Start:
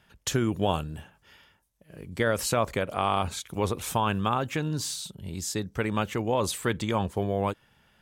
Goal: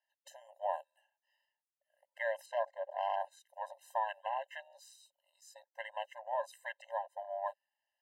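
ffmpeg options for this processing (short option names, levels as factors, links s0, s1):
-filter_complex "[0:a]afwtdn=0.0224,asettb=1/sr,asplit=3[s0][s1][s2];[s0]atrim=end=2.464[s3];[s1]atrim=start=2.46:end=3.21,asetpts=PTS-STARTPTS,afade=t=in:d=0.004:c=qsin,afade=t=out:st=0.746:d=0.004:c=qsin,adynamicsmooth=sensitivity=2:basefreq=5500[s4];[s2]atrim=start=3.206[s5];[s3][s4]acrossfade=d=0.004:c1=hsin:c2=qsin[s6];[s6][s5]acrossfade=d=0.004:c1=qsin:c2=hsin,afftfilt=real='re*eq(mod(floor(b*sr/1024/530),2),1)':imag='im*eq(mod(floor(b*sr/1024/530),2),1)':win_size=1024:overlap=0.75,volume=0.501"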